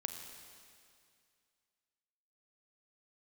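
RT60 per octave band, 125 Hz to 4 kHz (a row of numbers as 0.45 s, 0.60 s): 2.4 s, 2.3 s, 2.3 s, 2.3 s, 2.3 s, 2.3 s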